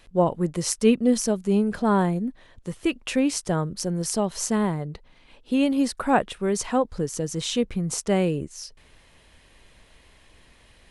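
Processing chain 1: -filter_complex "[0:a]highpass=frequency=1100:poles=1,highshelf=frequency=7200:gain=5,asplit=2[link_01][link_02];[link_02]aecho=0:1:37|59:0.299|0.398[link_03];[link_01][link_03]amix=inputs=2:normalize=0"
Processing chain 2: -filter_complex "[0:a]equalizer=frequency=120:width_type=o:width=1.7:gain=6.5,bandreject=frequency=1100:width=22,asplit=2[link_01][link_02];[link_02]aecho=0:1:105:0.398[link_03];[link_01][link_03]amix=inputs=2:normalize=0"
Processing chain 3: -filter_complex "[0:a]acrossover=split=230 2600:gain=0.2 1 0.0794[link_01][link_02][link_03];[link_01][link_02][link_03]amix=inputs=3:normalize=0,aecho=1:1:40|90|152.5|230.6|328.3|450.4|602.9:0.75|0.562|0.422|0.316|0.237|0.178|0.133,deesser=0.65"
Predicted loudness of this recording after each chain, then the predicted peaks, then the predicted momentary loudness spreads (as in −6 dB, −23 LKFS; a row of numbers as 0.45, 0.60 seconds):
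−29.0, −21.5, −23.5 LKFS; −3.5, −4.5, −3.5 dBFS; 11, 8, 11 LU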